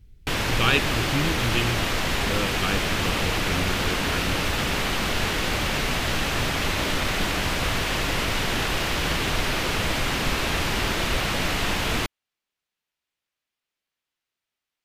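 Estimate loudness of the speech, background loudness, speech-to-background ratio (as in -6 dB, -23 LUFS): -29.0 LUFS, -24.5 LUFS, -4.5 dB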